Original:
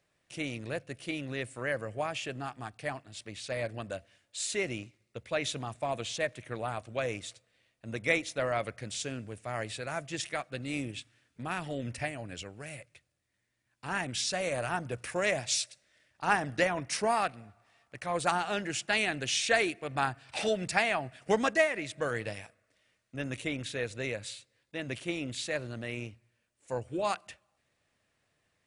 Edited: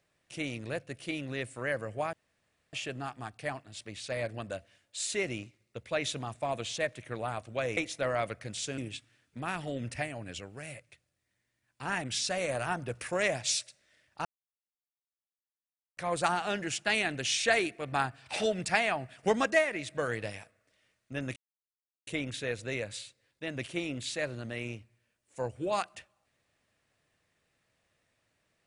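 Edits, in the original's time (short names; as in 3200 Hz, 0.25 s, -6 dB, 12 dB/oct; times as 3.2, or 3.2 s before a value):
2.13 insert room tone 0.60 s
7.17–8.14 cut
9.15–10.81 cut
16.28–18 mute
23.39 insert silence 0.71 s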